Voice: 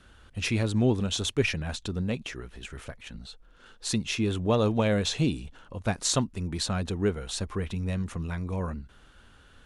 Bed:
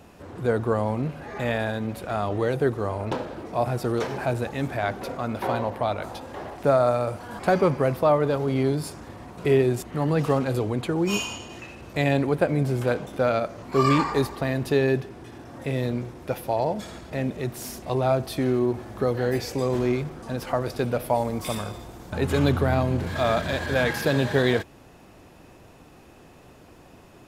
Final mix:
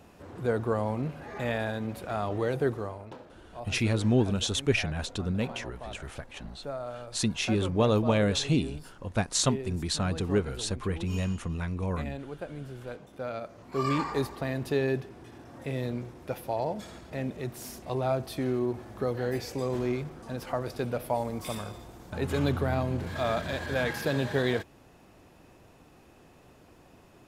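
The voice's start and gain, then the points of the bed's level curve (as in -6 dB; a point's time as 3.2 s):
3.30 s, 0.0 dB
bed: 2.75 s -4.5 dB
3.11 s -17 dB
12.81 s -17 dB
14.14 s -6 dB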